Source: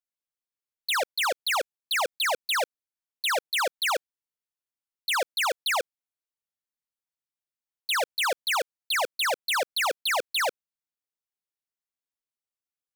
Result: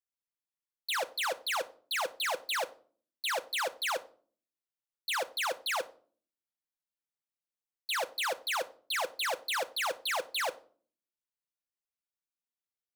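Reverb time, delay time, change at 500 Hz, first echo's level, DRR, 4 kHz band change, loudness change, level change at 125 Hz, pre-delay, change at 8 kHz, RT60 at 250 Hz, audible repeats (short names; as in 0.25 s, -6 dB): 0.45 s, none, -6.0 dB, none, 7.5 dB, -6.5 dB, -6.0 dB, n/a, 6 ms, -6.5 dB, 0.75 s, none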